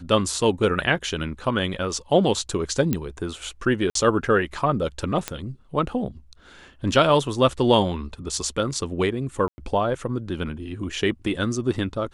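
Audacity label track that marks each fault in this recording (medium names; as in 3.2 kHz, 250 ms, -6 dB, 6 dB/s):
2.930000	2.930000	pop -9 dBFS
3.900000	3.950000	dropout 53 ms
5.280000	5.280000	pop -9 dBFS
9.480000	9.580000	dropout 100 ms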